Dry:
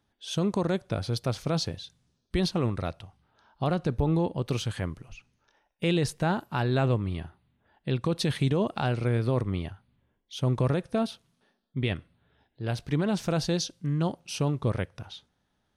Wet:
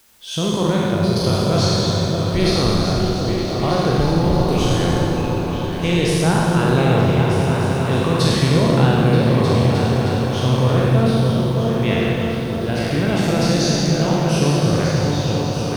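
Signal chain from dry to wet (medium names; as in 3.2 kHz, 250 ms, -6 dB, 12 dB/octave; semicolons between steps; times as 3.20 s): spectral sustain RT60 1.62 s; in parallel at -7 dB: word length cut 8-bit, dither triangular; on the sum: delay with an opening low-pass 310 ms, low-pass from 200 Hz, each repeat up 2 oct, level 0 dB; Schroeder reverb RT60 1.7 s, combs from 31 ms, DRR 1.5 dB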